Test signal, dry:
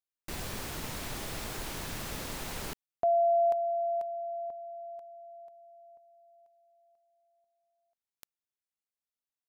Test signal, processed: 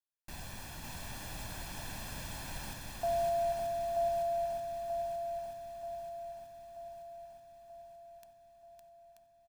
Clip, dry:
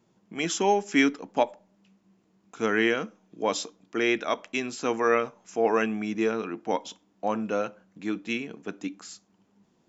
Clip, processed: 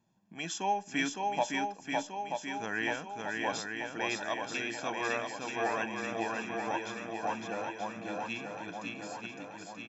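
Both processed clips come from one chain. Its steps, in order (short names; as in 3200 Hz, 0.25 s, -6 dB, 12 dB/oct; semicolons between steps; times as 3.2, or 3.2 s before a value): dynamic EQ 230 Hz, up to -7 dB, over -46 dBFS, Q 3.5; comb 1.2 ms, depth 61%; swung echo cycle 0.933 s, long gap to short 1.5:1, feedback 56%, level -3 dB; gain -9 dB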